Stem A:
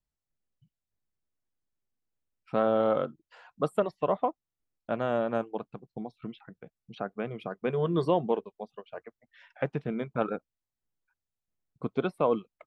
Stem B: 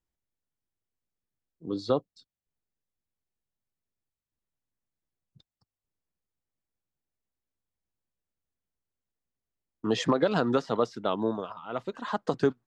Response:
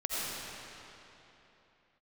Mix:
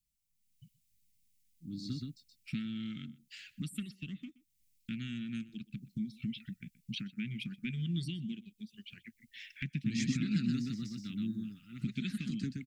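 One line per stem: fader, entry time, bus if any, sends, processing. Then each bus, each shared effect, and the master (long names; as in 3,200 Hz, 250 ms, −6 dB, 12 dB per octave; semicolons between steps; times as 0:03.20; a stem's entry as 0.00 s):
−0.5 dB, 0.00 s, no send, echo send −21 dB, high-shelf EQ 4,100 Hz +10 dB; downward compressor 2 to 1, threshold −43 dBFS, peak gain reduction 13 dB
−11.0 dB, 0.00 s, no send, echo send −3.5 dB, parametric band 3,200 Hz −13 dB 0.37 octaves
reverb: not used
echo: single-tap delay 124 ms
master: elliptic band-stop filter 230–2,200 Hz, stop band 50 dB; automatic gain control gain up to 9 dB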